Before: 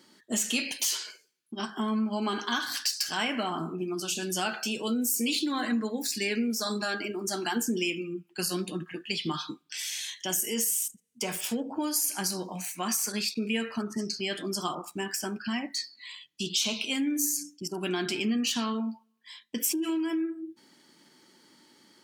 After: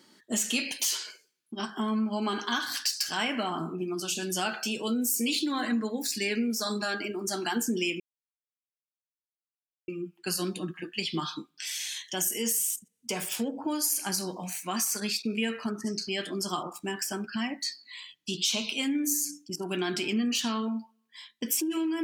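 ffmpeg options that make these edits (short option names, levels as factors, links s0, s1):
-filter_complex "[0:a]asplit=2[s0][s1];[s0]atrim=end=8,asetpts=PTS-STARTPTS,afade=t=out:st=7.996:d=0.004:c=hsin,apad=pad_dur=1.88[s2];[s1]atrim=start=8,asetpts=PTS-STARTPTS,afade=t=in:d=0.004:c=hsin[s3];[s2][s3]concat=n=2:v=0:a=1"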